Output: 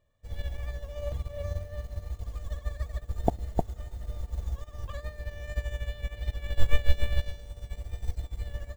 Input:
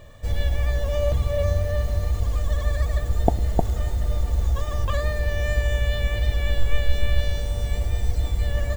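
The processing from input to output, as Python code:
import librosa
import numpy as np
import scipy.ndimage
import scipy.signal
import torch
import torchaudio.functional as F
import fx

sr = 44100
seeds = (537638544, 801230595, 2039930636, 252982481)

y = fx.upward_expand(x, sr, threshold_db=-30.0, expansion=2.5)
y = y * 10.0 ** (1.5 / 20.0)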